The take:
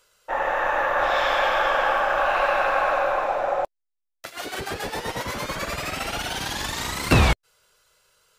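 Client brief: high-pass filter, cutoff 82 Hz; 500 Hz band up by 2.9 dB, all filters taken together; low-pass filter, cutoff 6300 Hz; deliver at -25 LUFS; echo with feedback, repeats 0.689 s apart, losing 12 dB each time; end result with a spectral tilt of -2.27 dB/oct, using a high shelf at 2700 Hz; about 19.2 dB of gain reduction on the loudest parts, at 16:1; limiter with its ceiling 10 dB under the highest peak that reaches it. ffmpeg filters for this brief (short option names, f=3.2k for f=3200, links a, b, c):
-af "highpass=82,lowpass=6.3k,equalizer=f=500:t=o:g=3,highshelf=f=2.7k:g=8,acompressor=threshold=-30dB:ratio=16,alimiter=level_in=1.5dB:limit=-24dB:level=0:latency=1,volume=-1.5dB,aecho=1:1:689|1378|2067:0.251|0.0628|0.0157,volume=10dB"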